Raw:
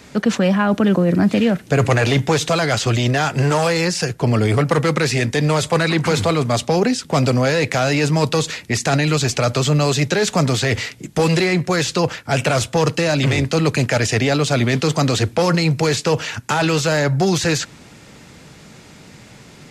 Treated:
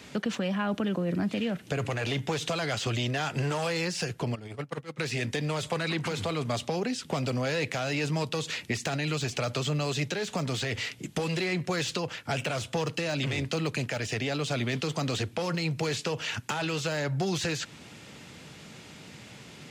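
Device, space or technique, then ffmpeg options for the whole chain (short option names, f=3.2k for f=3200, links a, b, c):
broadcast voice chain: -filter_complex "[0:a]asplit=3[a][b][c];[a]afade=t=out:st=4.34:d=0.02[d];[b]agate=range=-28dB:threshold=-12dB:ratio=16:detection=peak,afade=t=in:st=4.34:d=0.02,afade=t=out:st=4.98:d=0.02[e];[c]afade=t=in:st=4.98:d=0.02[f];[d][e][f]amix=inputs=3:normalize=0,highpass=72,deesser=0.45,acompressor=threshold=-22dB:ratio=3,equalizer=f=3k:t=o:w=0.72:g=5.5,alimiter=limit=-13.5dB:level=0:latency=1:release=465,volume=-5.5dB"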